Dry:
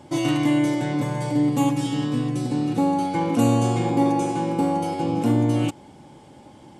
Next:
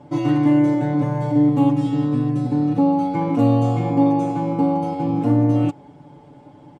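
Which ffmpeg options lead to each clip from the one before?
ffmpeg -i in.wav -af "lowpass=frequency=1200:poles=1,aecho=1:1:6.9:0.81" out.wav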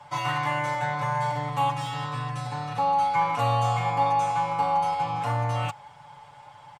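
ffmpeg -i in.wav -filter_complex "[0:a]firequalizer=gain_entry='entry(110,0);entry(290,-23);entry(480,-4);entry(940,14)':delay=0.05:min_phase=1,acrossover=split=170|770|2200[link_01][link_02][link_03][link_04];[link_04]asoftclip=type=tanh:threshold=-29dB[link_05];[link_01][link_02][link_03][link_05]amix=inputs=4:normalize=0,volume=-6.5dB" out.wav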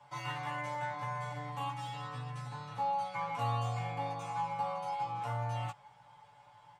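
ffmpeg -i in.wav -af "flanger=delay=15.5:depth=2:speed=0.38,volume=-8dB" out.wav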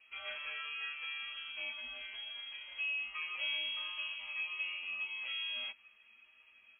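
ffmpeg -i in.wav -af "lowpass=frequency=2900:width_type=q:width=0.5098,lowpass=frequency=2900:width_type=q:width=0.6013,lowpass=frequency=2900:width_type=q:width=0.9,lowpass=frequency=2900:width_type=q:width=2.563,afreqshift=-3400,volume=-4dB" out.wav

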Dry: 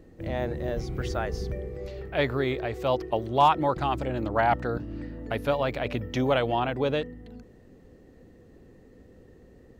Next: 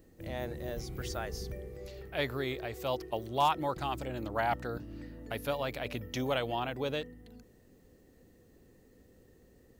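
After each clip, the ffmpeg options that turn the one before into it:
ffmpeg -i in.wav -af "aemphasis=mode=production:type=75kf,volume=-8.5dB" out.wav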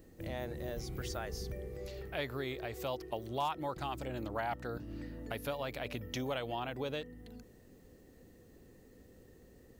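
ffmpeg -i in.wav -af "acompressor=threshold=-41dB:ratio=2,volume=2dB" out.wav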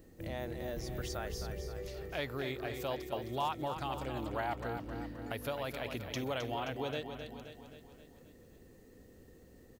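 ffmpeg -i in.wav -af "aecho=1:1:263|526|789|1052|1315|1578:0.398|0.215|0.116|0.0627|0.0339|0.0183" out.wav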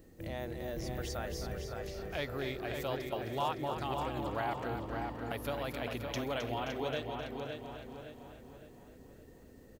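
ffmpeg -i in.wav -filter_complex "[0:a]asplit=2[link_01][link_02];[link_02]adelay=562,lowpass=frequency=3100:poles=1,volume=-4.5dB,asplit=2[link_03][link_04];[link_04]adelay=562,lowpass=frequency=3100:poles=1,volume=0.44,asplit=2[link_05][link_06];[link_06]adelay=562,lowpass=frequency=3100:poles=1,volume=0.44,asplit=2[link_07][link_08];[link_08]adelay=562,lowpass=frequency=3100:poles=1,volume=0.44,asplit=2[link_09][link_10];[link_10]adelay=562,lowpass=frequency=3100:poles=1,volume=0.44[link_11];[link_01][link_03][link_05][link_07][link_09][link_11]amix=inputs=6:normalize=0" out.wav

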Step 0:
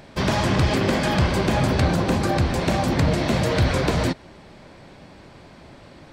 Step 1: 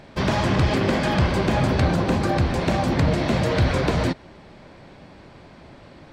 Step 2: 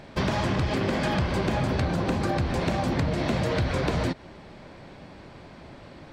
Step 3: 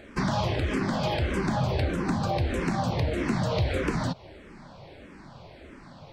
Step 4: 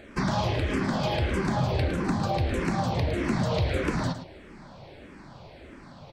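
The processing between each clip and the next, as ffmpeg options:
ffmpeg -i in.wav -af "highshelf=frequency=7000:gain=-9.5" out.wav
ffmpeg -i in.wav -af "acompressor=threshold=-22dB:ratio=6" out.wav
ffmpeg -i in.wav -filter_complex "[0:a]asplit=2[link_01][link_02];[link_02]afreqshift=-1.6[link_03];[link_01][link_03]amix=inputs=2:normalize=1,volume=1.5dB" out.wav
ffmpeg -i in.wav -af "aecho=1:1:109:0.299" out.wav

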